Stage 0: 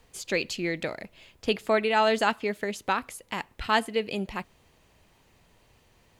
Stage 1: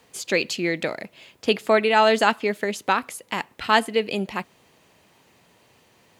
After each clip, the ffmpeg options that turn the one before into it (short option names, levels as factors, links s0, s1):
-af "highpass=150,volume=1.88"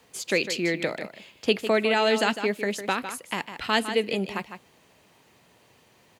-filter_complex "[0:a]aecho=1:1:153:0.282,acrossover=split=630|1600[s0][s1][s2];[s1]acompressor=threshold=0.0251:ratio=6[s3];[s0][s3][s2]amix=inputs=3:normalize=0,volume=0.841"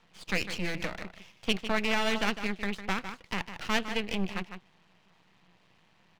-af "highpass=100,equalizer=f=180:t=q:w=4:g=10,equalizer=f=260:t=q:w=4:g=-7,equalizer=f=400:t=q:w=4:g=-10,equalizer=f=570:t=q:w=4:g=-6,lowpass=f=4000:w=0.5412,lowpass=f=4000:w=1.3066,aeval=exprs='max(val(0),0)':c=same"